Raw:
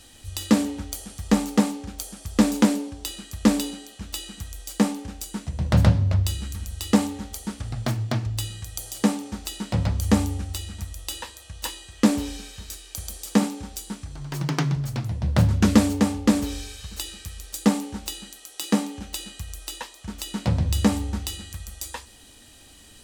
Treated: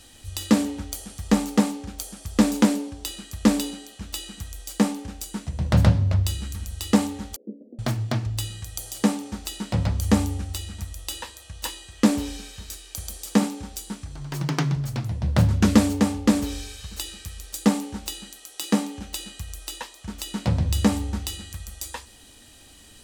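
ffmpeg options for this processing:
ffmpeg -i in.wav -filter_complex "[0:a]asettb=1/sr,asplit=3[link_01][link_02][link_03];[link_01]atrim=end=7.364[link_04];[link_02]atrim=start=7.36:end=7.79,asetpts=PTS-STARTPTS,afade=type=in:duration=0.004:curve=qsin,afade=type=out:start_time=0.426:duration=0.004:curve=qsin,asuperpass=centerf=350:order=12:qfactor=1[link_05];[link_03]atrim=start=7.786[link_06];[link_04][link_05]acrossfade=duration=0.004:curve1=hsin:curve2=qsin[link_07];[link_07][link_06]acrossfade=duration=0.004:curve1=qsin:curve2=hsin" out.wav

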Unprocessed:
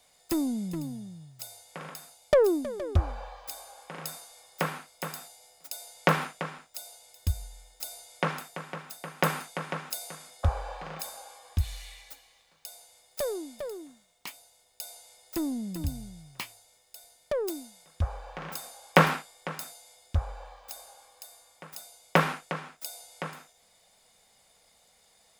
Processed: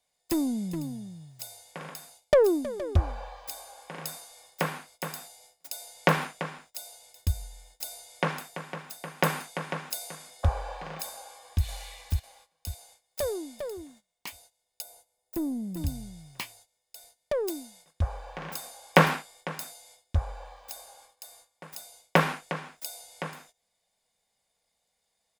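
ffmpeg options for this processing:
ffmpeg -i in.wav -filter_complex "[0:a]asplit=2[link_01][link_02];[link_02]afade=type=in:start_time=11.13:duration=0.01,afade=type=out:start_time=11.64:duration=0.01,aecho=0:1:550|1100|1650|2200|2750:0.794328|0.278015|0.0973052|0.0340568|0.0119199[link_03];[link_01][link_03]amix=inputs=2:normalize=0,asettb=1/sr,asplit=3[link_04][link_05][link_06];[link_04]atrim=end=14.824[link_07];[link_05]atrim=start=14.82:end=15.77,asetpts=PTS-STARTPTS,afade=type=in:duration=0.004:curve=qsin,afade=type=out:start_time=0.946:duration=0.004:curve=qsin,equalizer=frequency=3800:width=0.33:gain=-11[link_08];[link_06]atrim=start=15.766[link_09];[link_07][link_08]acrossfade=duration=0.004:curve1=hsin:curve2=qsin[link_10];[link_10][link_09]acrossfade=duration=0.004:curve1=qsin:curve2=hsin,bandreject=frequency=1300:width=11,agate=range=-16dB:threshold=-56dB:ratio=16:detection=peak,volume=1dB" out.wav

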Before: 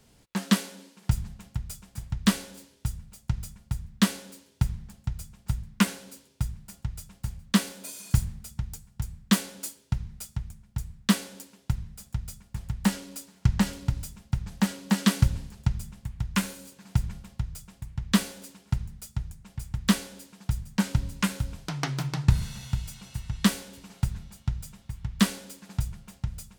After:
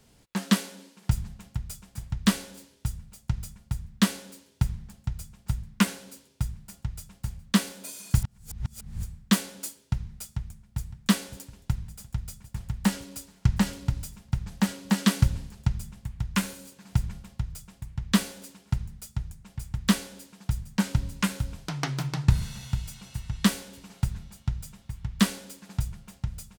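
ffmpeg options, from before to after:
ffmpeg -i in.wav -filter_complex "[0:a]asplit=2[link_01][link_02];[link_02]afade=type=in:start_time=10.16:duration=0.01,afade=type=out:start_time=10.8:duration=0.01,aecho=0:1:560|1120|1680|2240|2800|3360|3920|4480|5040|5600|6160|6720:0.211349|0.169079|0.135263|0.108211|0.0865685|0.0692548|0.0554038|0.0443231|0.0354585|0.0283668|0.0226934|0.0181547[link_03];[link_01][link_03]amix=inputs=2:normalize=0,asplit=3[link_04][link_05][link_06];[link_04]atrim=end=8.222[link_07];[link_05]atrim=start=8.218:end=9.032,asetpts=PTS-STARTPTS,areverse[link_08];[link_06]atrim=start=9.028[link_09];[link_07][link_08]acrossfade=duration=0.004:curve1=hsin:curve2=hsin[link_10];[link_10][link_09]acrossfade=duration=0.004:curve1=hsin:curve2=hsin" out.wav

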